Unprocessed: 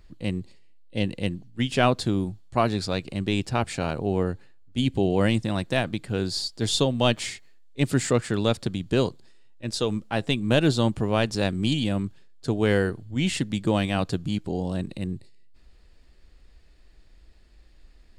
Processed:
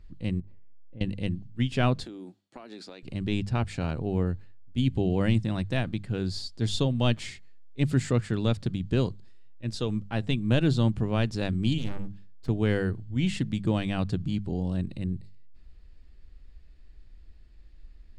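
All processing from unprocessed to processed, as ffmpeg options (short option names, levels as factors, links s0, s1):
-filter_complex "[0:a]asettb=1/sr,asplit=3[s0][s1][s2];[s0]atrim=end=0.404[s3];[s1]atrim=start=0.4:end=1.01,asetpts=PTS-STARTPTS,afade=t=in:d=0.004:c=qsin,afade=t=out:st=0.606:d=0.004:c=qsin,lowpass=1300,acompressor=threshold=0.00708:ratio=3:attack=3.2:release=140:knee=1:detection=peak[s4];[s2]atrim=start=1.006[s5];[s3][s4]acrossfade=d=0.004:c1=hsin:c2=qsin[s6];[s6][s5]acrossfade=d=0.004:c1=qsin:c2=hsin,asettb=1/sr,asplit=3[s7][s8][s9];[s7]atrim=end=2.044[s10];[s8]atrim=start=2.04:end=3.03,asetpts=PTS-STARTPTS,afade=t=in:d=0.004:c=qsin,afade=t=out:st=0.986:d=0.004:c=qsin,highpass=f=270:w=0.5412,highpass=f=270:w=1.3066,equalizer=f=1100:w=7.6:g=-3.5,acompressor=threshold=0.0224:ratio=12:attack=3.2:release=140:knee=1:detection=peak[s11];[s9]atrim=start=3.026[s12];[s10][s11]acrossfade=d=0.004:c1=hsin:c2=qsin[s13];[s13][s12]acrossfade=d=0.004:c1=qsin:c2=hsin,asettb=1/sr,asplit=3[s14][s15][s16];[s14]atrim=end=11.784[s17];[s15]atrim=start=11.78:end=12.49,asetpts=PTS-STARTPTS,afade=t=in:d=0.004:c=qsin,afade=t=out:st=0.706:d=0.004:c=qsin,bandreject=f=60:t=h:w=6,bandreject=f=120:t=h:w=6,bandreject=f=180:t=h:w=6,bandreject=f=240:t=h:w=6,bandreject=f=300:t=h:w=6,aeval=exprs='max(val(0),0)':c=same[s18];[s16]atrim=start=12.486[s19];[s17][s18]acrossfade=d=0.004:c1=hsin:c2=qsin[s20];[s20][s19]acrossfade=d=0.004:c1=qsin:c2=hsin,lowpass=f=1300:p=1,equalizer=f=630:w=0.36:g=-11.5,bandreject=f=50:t=h:w=6,bandreject=f=100:t=h:w=6,bandreject=f=150:t=h:w=6,bandreject=f=200:t=h:w=6,volume=1.78"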